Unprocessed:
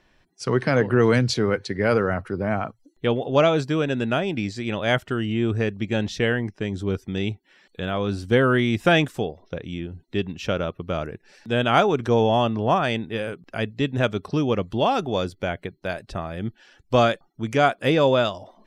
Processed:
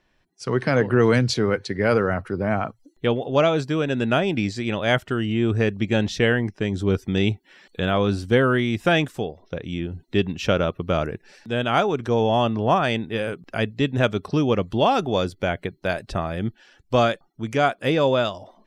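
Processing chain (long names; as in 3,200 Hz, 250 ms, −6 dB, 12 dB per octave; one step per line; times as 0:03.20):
automatic gain control
level −5.5 dB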